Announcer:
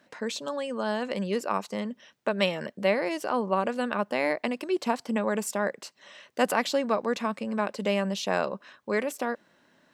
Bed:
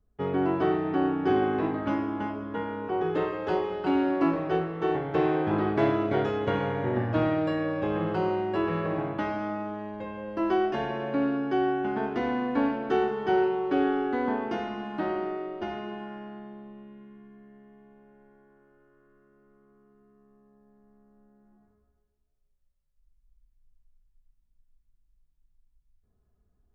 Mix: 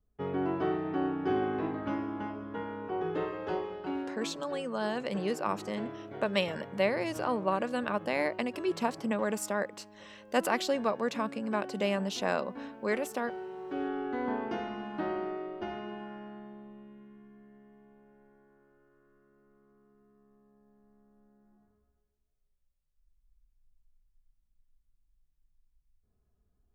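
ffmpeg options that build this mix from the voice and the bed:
-filter_complex "[0:a]adelay=3950,volume=0.668[s0];[1:a]volume=2.51,afade=t=out:st=3.44:d=0.87:silence=0.251189,afade=t=in:st=13.43:d=0.98:silence=0.211349[s1];[s0][s1]amix=inputs=2:normalize=0"

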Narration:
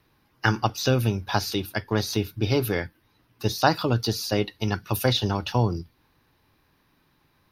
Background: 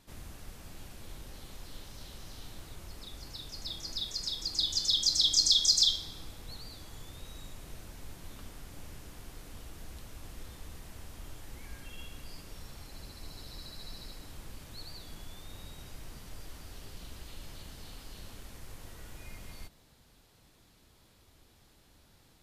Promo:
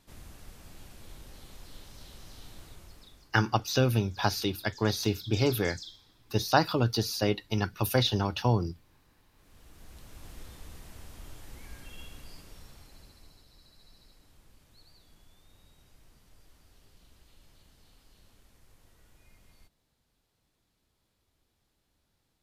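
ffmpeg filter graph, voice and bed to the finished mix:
-filter_complex "[0:a]adelay=2900,volume=0.708[s0];[1:a]volume=7.5,afade=t=out:st=2.64:d=0.72:silence=0.125893,afade=t=in:st=9.34:d=0.97:silence=0.105925,afade=t=out:st=12.04:d=1.42:silence=0.223872[s1];[s0][s1]amix=inputs=2:normalize=0"

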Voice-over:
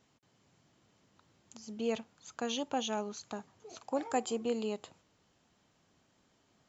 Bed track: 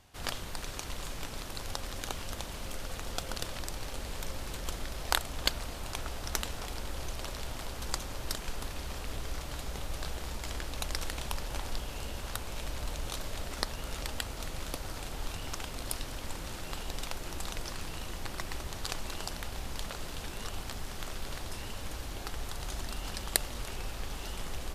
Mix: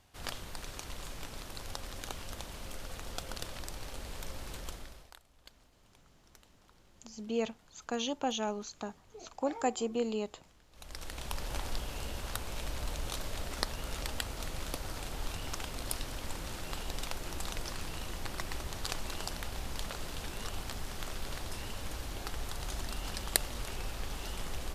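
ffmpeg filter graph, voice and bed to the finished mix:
-filter_complex "[0:a]adelay=5500,volume=1.12[s0];[1:a]volume=13.3,afade=t=out:st=4.58:d=0.54:silence=0.0707946,afade=t=in:st=10.71:d=0.78:silence=0.0473151[s1];[s0][s1]amix=inputs=2:normalize=0"

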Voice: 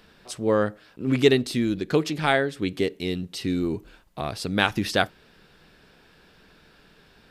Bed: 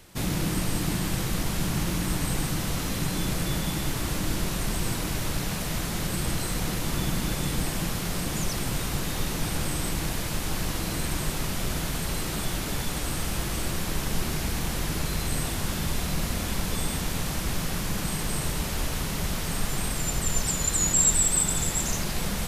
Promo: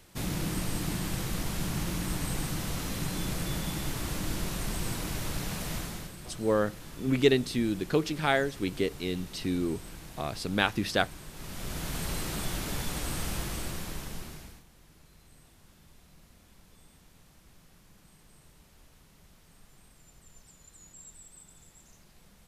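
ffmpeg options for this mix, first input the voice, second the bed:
-filter_complex "[0:a]adelay=6000,volume=0.596[s0];[1:a]volume=2.51,afade=t=out:st=5.74:d=0.4:silence=0.251189,afade=t=in:st=11.32:d=0.7:silence=0.223872,afade=t=out:st=13.29:d=1.35:silence=0.0530884[s1];[s0][s1]amix=inputs=2:normalize=0"

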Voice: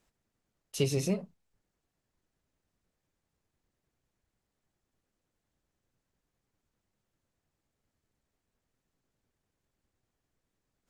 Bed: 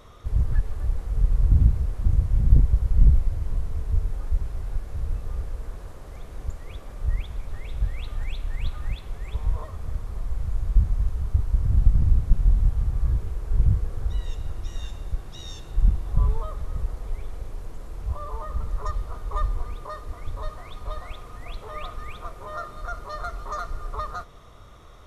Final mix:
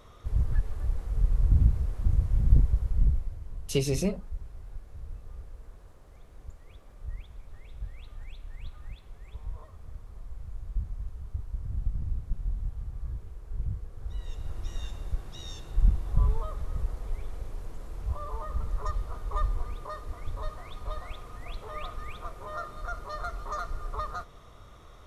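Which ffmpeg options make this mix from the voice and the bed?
-filter_complex "[0:a]adelay=2950,volume=1.26[s0];[1:a]volume=2,afade=t=out:st=2.58:d=0.82:silence=0.354813,afade=t=in:st=13.95:d=0.73:silence=0.316228[s1];[s0][s1]amix=inputs=2:normalize=0"

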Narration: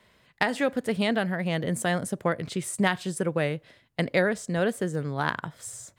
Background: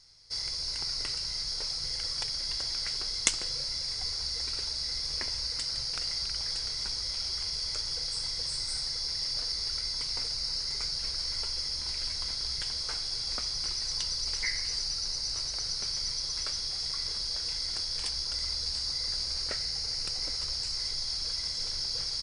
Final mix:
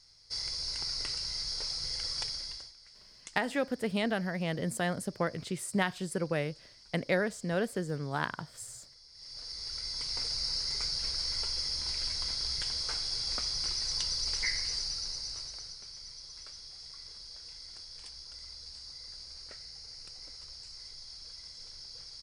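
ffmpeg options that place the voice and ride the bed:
-filter_complex "[0:a]adelay=2950,volume=0.531[s0];[1:a]volume=10.6,afade=t=out:st=2.23:d=0.5:silence=0.0891251,afade=t=in:st=9.12:d=1.24:silence=0.0749894,afade=t=out:st=14.52:d=1.28:silence=0.211349[s1];[s0][s1]amix=inputs=2:normalize=0"

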